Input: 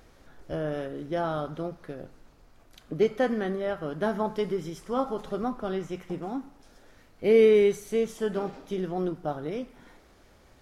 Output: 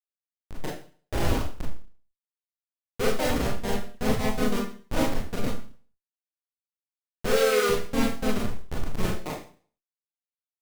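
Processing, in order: Schmitt trigger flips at -22.5 dBFS; Schroeder reverb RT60 0.43 s, combs from 26 ms, DRR -4 dB; harmony voices +3 st -2 dB

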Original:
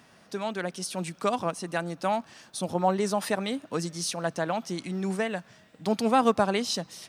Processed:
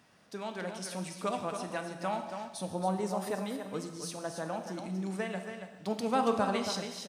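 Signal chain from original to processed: 2.65–5.07 s: peaking EQ 3.3 kHz -5.5 dB 2.7 oct; delay 278 ms -8 dB; gated-style reverb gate 440 ms falling, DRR 5.5 dB; trim -7.5 dB

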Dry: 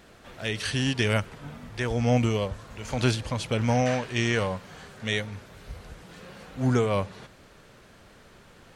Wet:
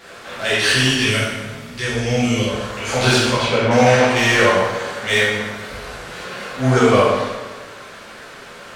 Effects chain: 0.86–2.48 s: peaking EQ 880 Hz -13.5 dB 2.5 oct; 3.23–3.71 s: low-pass that closes with the level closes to 1.8 kHz, closed at -22.5 dBFS; overdrive pedal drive 17 dB, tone 7.6 kHz, clips at -10 dBFS; plate-style reverb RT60 1.3 s, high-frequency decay 0.7×, DRR -9.5 dB; trim -2.5 dB

